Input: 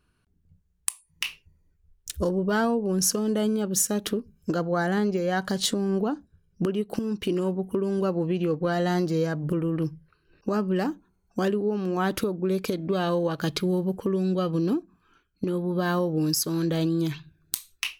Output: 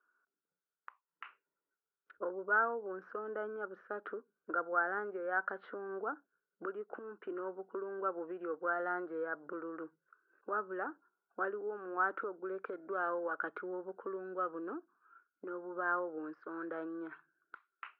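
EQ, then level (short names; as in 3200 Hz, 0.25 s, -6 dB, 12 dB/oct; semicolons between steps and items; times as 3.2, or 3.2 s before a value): HPF 360 Hz 24 dB/oct; ladder low-pass 1500 Hz, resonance 80%; air absorption 280 m; +1.0 dB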